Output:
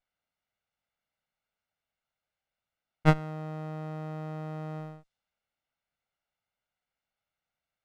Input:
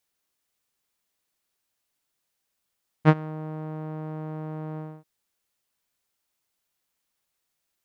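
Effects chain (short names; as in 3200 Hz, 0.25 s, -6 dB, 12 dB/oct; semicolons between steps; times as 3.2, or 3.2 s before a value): minimum comb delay 1.4 ms; low-pass opened by the level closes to 2700 Hz, open at -35 dBFS; gain -1.5 dB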